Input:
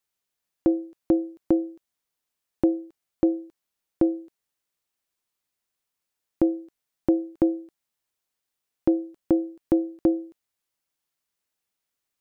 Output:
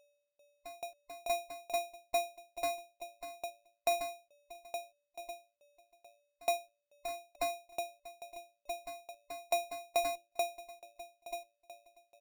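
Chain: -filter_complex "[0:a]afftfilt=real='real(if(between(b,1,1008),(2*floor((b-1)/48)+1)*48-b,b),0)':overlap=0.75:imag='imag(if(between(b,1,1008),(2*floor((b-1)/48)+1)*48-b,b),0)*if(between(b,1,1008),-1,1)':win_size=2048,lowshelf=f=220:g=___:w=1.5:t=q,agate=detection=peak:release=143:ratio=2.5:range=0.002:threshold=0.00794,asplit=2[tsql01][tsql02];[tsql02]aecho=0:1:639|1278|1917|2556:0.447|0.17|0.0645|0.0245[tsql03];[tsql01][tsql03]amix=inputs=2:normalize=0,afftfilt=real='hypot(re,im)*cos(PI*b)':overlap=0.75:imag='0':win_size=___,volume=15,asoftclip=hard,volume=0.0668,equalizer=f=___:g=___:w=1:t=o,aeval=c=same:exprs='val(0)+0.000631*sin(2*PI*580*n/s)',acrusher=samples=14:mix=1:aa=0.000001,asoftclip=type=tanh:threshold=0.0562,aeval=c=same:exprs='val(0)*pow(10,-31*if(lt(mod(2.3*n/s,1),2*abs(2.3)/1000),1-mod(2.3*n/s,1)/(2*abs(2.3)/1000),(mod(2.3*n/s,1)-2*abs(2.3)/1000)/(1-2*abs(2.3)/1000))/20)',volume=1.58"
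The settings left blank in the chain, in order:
6.5, 512, 1300, -8.5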